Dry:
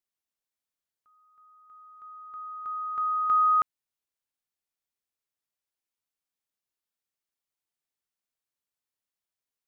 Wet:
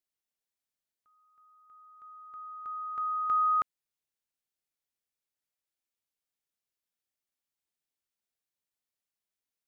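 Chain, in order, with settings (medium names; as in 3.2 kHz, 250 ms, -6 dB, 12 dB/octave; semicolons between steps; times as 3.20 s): peaking EQ 1.1 kHz -3.5 dB; trim -1.5 dB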